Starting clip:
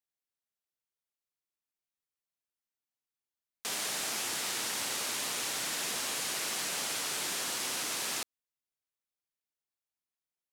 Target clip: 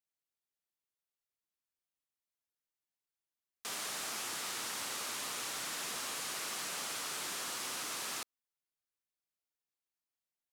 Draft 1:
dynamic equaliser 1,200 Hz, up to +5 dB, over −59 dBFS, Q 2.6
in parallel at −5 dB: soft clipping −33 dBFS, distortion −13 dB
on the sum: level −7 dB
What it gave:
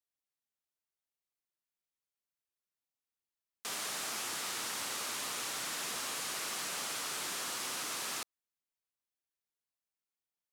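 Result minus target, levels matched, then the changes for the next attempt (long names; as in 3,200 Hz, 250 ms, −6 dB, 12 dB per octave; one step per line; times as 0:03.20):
soft clipping: distortion −6 dB
change: soft clipping −42.5 dBFS, distortion −6 dB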